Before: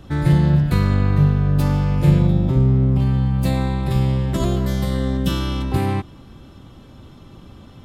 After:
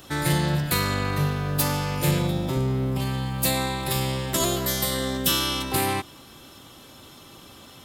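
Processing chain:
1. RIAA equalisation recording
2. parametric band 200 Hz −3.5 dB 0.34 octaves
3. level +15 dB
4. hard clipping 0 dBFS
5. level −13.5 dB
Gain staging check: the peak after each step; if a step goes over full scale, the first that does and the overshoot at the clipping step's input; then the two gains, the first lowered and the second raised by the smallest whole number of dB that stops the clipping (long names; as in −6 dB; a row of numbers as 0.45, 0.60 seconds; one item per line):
−8.0, −8.0, +7.0, 0.0, −13.5 dBFS
step 3, 7.0 dB
step 3 +8 dB, step 5 −6.5 dB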